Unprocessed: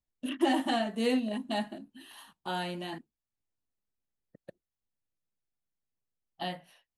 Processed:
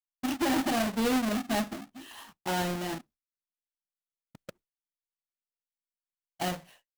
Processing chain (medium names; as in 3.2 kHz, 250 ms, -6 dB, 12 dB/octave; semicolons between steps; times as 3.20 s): square wave that keeps the level; expander -52 dBFS; peak limiter -23 dBFS, peak gain reduction 8 dB